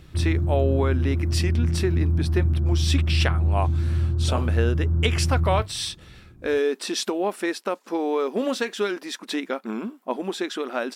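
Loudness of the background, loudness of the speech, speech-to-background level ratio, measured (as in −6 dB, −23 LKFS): −23.5 LKFS, −27.5 LKFS, −4.0 dB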